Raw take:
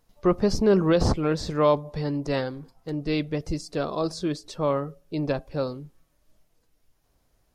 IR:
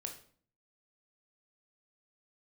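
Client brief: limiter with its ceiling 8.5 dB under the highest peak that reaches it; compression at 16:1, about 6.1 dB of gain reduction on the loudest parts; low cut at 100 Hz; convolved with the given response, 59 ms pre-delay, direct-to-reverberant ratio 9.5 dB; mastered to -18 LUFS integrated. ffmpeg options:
-filter_complex "[0:a]highpass=100,acompressor=threshold=-21dB:ratio=16,alimiter=limit=-23dB:level=0:latency=1,asplit=2[a][b];[1:a]atrim=start_sample=2205,adelay=59[c];[b][c]afir=irnorm=-1:irlink=0,volume=-7dB[d];[a][d]amix=inputs=2:normalize=0,volume=14.5dB"

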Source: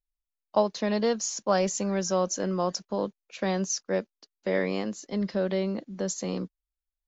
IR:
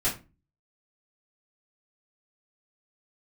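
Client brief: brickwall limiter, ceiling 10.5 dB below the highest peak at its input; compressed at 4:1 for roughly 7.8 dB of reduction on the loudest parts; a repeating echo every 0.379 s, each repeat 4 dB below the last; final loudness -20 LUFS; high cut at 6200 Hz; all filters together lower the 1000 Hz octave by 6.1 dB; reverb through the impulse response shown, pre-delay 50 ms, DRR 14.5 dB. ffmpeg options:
-filter_complex "[0:a]lowpass=6.2k,equalizer=f=1k:t=o:g=-8.5,acompressor=threshold=-31dB:ratio=4,alimiter=level_in=5.5dB:limit=-24dB:level=0:latency=1,volume=-5.5dB,aecho=1:1:379|758|1137|1516|1895|2274|2653|3032|3411:0.631|0.398|0.25|0.158|0.0994|0.0626|0.0394|0.0249|0.0157,asplit=2[a][b];[1:a]atrim=start_sample=2205,adelay=50[c];[b][c]afir=irnorm=-1:irlink=0,volume=-23.5dB[d];[a][d]amix=inputs=2:normalize=0,volume=17dB"

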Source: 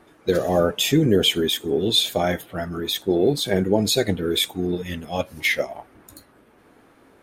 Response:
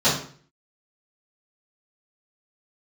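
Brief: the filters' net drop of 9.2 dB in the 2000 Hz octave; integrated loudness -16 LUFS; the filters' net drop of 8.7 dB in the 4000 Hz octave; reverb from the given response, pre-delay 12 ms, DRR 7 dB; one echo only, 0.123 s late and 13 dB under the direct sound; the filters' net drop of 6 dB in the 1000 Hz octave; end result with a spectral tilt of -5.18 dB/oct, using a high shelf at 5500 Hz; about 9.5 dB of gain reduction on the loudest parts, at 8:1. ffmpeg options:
-filter_complex "[0:a]equalizer=f=1k:t=o:g=-8,equalizer=f=2k:t=o:g=-6.5,equalizer=f=4k:t=o:g=-6,highshelf=f=5.5k:g=-5.5,acompressor=threshold=-24dB:ratio=8,aecho=1:1:123:0.224,asplit=2[a][b];[1:a]atrim=start_sample=2205,adelay=12[c];[b][c]afir=irnorm=-1:irlink=0,volume=-25.5dB[d];[a][d]amix=inputs=2:normalize=0,volume=12.5dB"

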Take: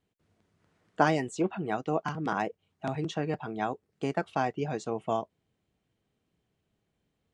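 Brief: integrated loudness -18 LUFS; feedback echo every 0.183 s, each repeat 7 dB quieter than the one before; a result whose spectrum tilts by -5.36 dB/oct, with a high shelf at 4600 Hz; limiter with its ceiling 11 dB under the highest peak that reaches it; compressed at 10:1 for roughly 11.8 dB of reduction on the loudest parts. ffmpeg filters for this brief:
-af "highshelf=f=4.6k:g=5,acompressor=threshold=-29dB:ratio=10,alimiter=level_in=1.5dB:limit=-24dB:level=0:latency=1,volume=-1.5dB,aecho=1:1:183|366|549|732|915:0.447|0.201|0.0905|0.0407|0.0183,volume=19.5dB"

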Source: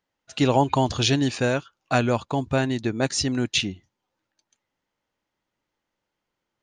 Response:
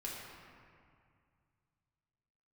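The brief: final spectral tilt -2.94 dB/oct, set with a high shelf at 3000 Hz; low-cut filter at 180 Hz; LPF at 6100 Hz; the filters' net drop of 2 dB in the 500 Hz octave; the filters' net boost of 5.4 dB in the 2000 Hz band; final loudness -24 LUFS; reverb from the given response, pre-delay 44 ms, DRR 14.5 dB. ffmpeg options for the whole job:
-filter_complex "[0:a]highpass=180,lowpass=6.1k,equalizer=f=500:t=o:g=-3,equalizer=f=2k:t=o:g=4.5,highshelf=f=3k:g=8,asplit=2[a][b];[1:a]atrim=start_sample=2205,adelay=44[c];[b][c]afir=irnorm=-1:irlink=0,volume=-15dB[d];[a][d]amix=inputs=2:normalize=0,volume=-1.5dB"

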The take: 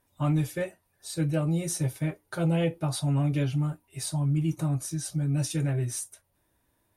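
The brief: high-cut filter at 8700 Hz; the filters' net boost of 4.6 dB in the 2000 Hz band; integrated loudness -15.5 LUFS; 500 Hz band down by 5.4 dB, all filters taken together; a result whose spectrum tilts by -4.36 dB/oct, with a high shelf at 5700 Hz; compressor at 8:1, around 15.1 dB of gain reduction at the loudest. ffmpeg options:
-af "lowpass=8.7k,equalizer=f=500:t=o:g=-7,equalizer=f=2k:t=o:g=5,highshelf=f=5.7k:g=9,acompressor=threshold=-39dB:ratio=8,volume=26.5dB"

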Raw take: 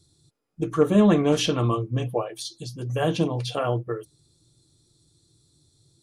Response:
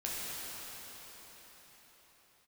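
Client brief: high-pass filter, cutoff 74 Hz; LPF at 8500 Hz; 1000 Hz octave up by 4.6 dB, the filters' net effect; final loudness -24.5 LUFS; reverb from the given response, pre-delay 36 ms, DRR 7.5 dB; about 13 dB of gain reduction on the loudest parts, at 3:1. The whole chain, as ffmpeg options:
-filter_complex "[0:a]highpass=74,lowpass=8.5k,equalizer=f=1k:t=o:g=6,acompressor=threshold=-31dB:ratio=3,asplit=2[a][b];[1:a]atrim=start_sample=2205,adelay=36[c];[b][c]afir=irnorm=-1:irlink=0,volume=-12.5dB[d];[a][d]amix=inputs=2:normalize=0,volume=8.5dB"

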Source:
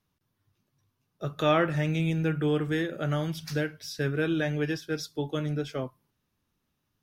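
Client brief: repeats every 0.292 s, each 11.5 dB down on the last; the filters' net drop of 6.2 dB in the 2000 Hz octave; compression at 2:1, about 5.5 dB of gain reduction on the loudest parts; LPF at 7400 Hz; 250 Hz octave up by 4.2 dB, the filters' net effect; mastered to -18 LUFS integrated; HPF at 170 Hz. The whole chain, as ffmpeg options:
-af "highpass=170,lowpass=7.4k,equalizer=f=250:t=o:g=8,equalizer=f=2k:t=o:g=-8.5,acompressor=threshold=-28dB:ratio=2,aecho=1:1:292|584|876:0.266|0.0718|0.0194,volume=13dB"

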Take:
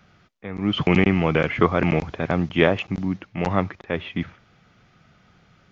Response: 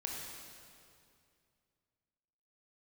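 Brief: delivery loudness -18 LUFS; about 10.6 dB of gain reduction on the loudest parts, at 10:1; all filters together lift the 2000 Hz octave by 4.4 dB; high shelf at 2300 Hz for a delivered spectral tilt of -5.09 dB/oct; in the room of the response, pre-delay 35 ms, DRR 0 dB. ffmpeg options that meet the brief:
-filter_complex "[0:a]equalizer=f=2k:t=o:g=9,highshelf=f=2.3k:g=-7.5,acompressor=threshold=-21dB:ratio=10,asplit=2[a][b];[1:a]atrim=start_sample=2205,adelay=35[c];[b][c]afir=irnorm=-1:irlink=0,volume=-1dB[d];[a][d]amix=inputs=2:normalize=0,volume=7dB"

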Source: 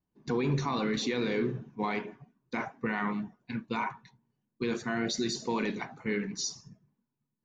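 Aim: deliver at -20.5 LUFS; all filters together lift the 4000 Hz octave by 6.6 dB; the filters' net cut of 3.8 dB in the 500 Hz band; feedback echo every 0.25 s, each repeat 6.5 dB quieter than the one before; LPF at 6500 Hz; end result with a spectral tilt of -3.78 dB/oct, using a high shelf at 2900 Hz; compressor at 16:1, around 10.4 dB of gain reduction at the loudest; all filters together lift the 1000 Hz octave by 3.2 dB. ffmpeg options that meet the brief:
-af "lowpass=6.5k,equalizer=f=500:t=o:g=-6,equalizer=f=1k:t=o:g=4.5,highshelf=f=2.9k:g=3.5,equalizer=f=4k:t=o:g=5.5,acompressor=threshold=-35dB:ratio=16,aecho=1:1:250|500|750|1000|1250|1500:0.473|0.222|0.105|0.0491|0.0231|0.0109,volume=19dB"

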